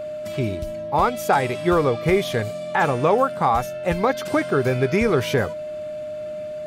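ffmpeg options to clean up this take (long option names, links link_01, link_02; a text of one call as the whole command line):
ffmpeg -i in.wav -af "bandreject=frequency=610:width=30" out.wav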